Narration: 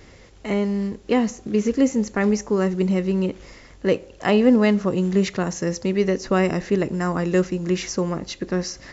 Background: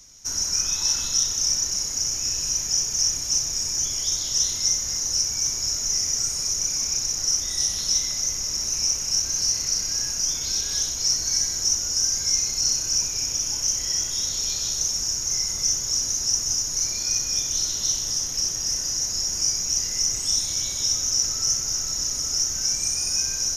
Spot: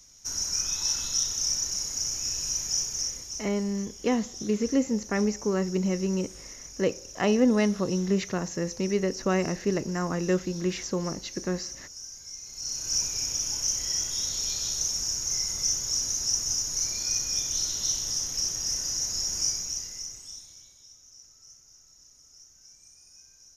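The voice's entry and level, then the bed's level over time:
2.95 s, −6.0 dB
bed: 0:02.82 −5 dB
0:03.63 −19.5 dB
0:12.40 −19.5 dB
0:12.95 −4 dB
0:19.46 −4 dB
0:20.86 −29.5 dB

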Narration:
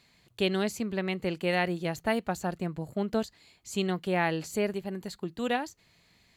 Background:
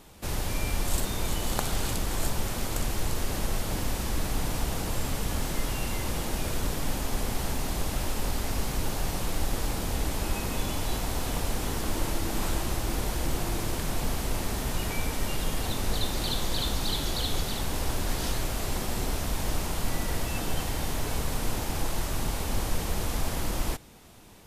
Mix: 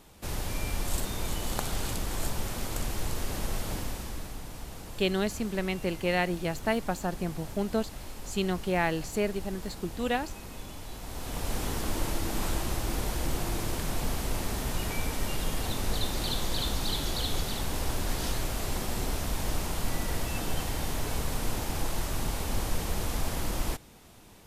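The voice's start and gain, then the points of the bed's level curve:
4.60 s, 0.0 dB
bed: 0:03.71 −3 dB
0:04.42 −12 dB
0:10.94 −12 dB
0:11.55 −1.5 dB

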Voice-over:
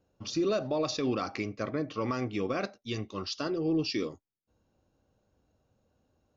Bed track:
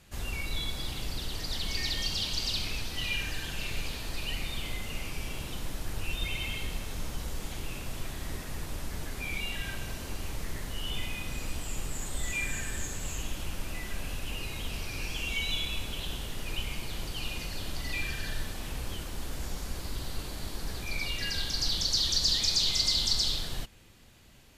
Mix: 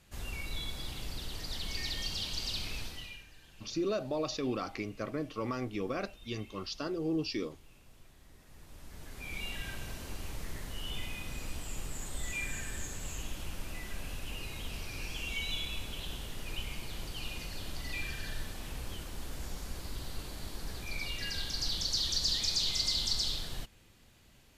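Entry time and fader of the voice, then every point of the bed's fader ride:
3.40 s, −4.0 dB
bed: 0:02.86 −5 dB
0:03.27 −21.5 dB
0:08.33 −21.5 dB
0:09.44 −4.5 dB

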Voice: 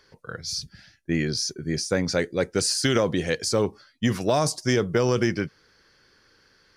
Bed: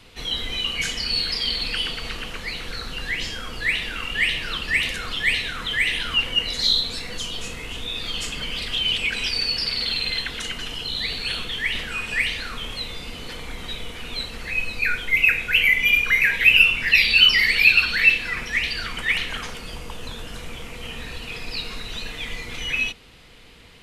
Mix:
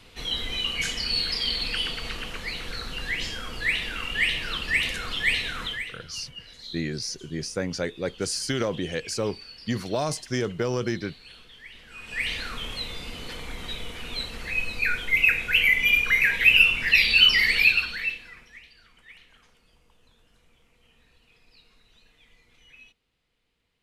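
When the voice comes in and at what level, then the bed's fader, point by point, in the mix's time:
5.65 s, −5.0 dB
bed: 0:05.65 −2.5 dB
0:05.97 −21 dB
0:11.79 −21 dB
0:12.32 −2.5 dB
0:17.60 −2.5 dB
0:18.71 −27.5 dB

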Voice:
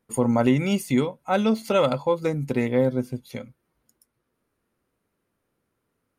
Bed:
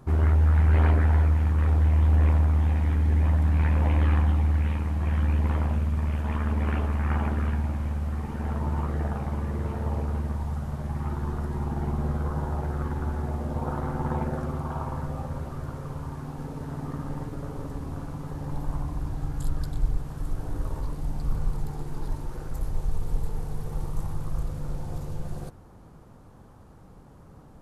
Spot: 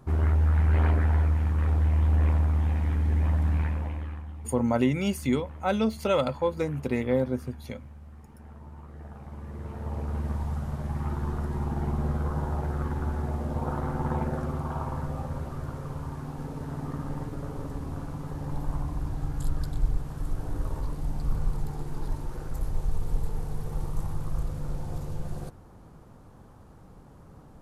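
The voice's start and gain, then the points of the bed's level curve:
4.35 s, −4.0 dB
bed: 0:03.54 −2.5 dB
0:04.23 −17.5 dB
0:08.83 −17.5 dB
0:10.31 −0.5 dB

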